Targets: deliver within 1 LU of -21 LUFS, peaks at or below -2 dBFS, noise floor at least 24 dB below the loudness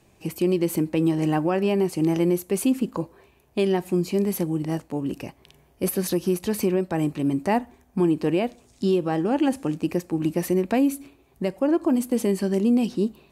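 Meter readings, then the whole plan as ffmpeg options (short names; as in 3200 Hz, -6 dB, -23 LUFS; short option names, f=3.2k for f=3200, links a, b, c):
loudness -24.0 LUFS; peak -13.0 dBFS; loudness target -21.0 LUFS
-> -af "volume=3dB"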